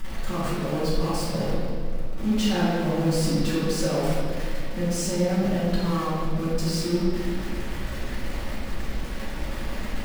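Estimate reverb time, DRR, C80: 1.9 s, −10.5 dB, 0.5 dB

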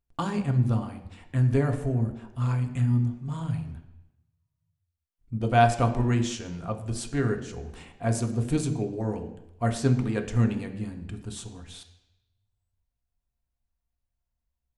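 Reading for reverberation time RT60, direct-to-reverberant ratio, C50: 0.85 s, 4.0 dB, 10.0 dB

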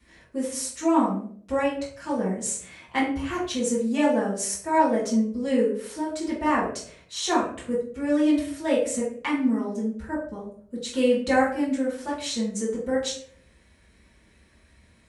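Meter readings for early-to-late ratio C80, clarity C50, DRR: 9.0 dB, 4.5 dB, −9.0 dB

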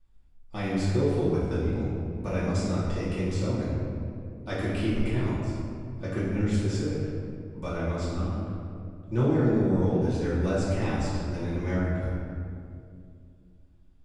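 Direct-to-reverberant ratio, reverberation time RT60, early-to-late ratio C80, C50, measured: −10.0 dB, 2.4 s, 0.5 dB, −1.5 dB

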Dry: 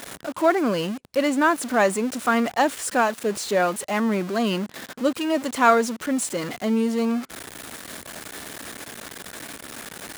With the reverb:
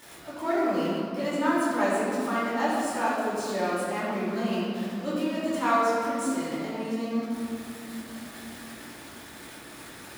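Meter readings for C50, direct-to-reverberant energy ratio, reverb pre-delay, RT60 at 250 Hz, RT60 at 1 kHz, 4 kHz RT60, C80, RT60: −2.0 dB, −9.5 dB, 3 ms, 4.2 s, 2.5 s, 1.6 s, 0.0 dB, 2.7 s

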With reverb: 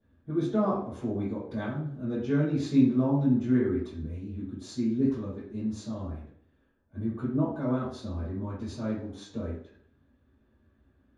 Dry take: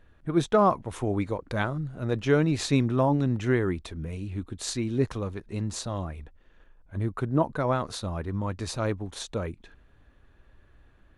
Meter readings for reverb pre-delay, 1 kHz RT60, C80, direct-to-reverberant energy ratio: 3 ms, 0.55 s, 6.0 dB, −13.0 dB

